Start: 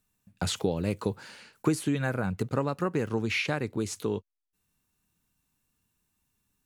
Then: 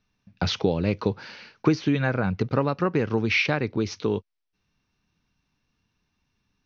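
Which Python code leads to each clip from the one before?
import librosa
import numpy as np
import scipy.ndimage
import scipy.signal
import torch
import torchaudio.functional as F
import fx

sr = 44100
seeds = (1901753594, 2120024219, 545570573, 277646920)

y = scipy.signal.sosfilt(scipy.signal.butter(16, 6000.0, 'lowpass', fs=sr, output='sos'), x)
y = fx.peak_eq(y, sr, hz=2300.0, db=3.0, octaves=0.28)
y = F.gain(torch.from_numpy(y), 5.0).numpy()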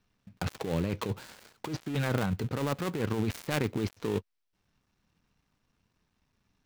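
y = fx.dead_time(x, sr, dead_ms=0.22)
y = fx.over_compress(y, sr, threshold_db=-27.0, ratio=-1.0)
y = F.gain(torch.from_numpy(y), -3.0).numpy()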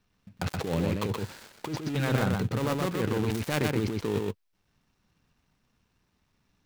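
y = x + 10.0 ** (-3.0 / 20.0) * np.pad(x, (int(124 * sr / 1000.0), 0))[:len(x)]
y = F.gain(torch.from_numpy(y), 1.5).numpy()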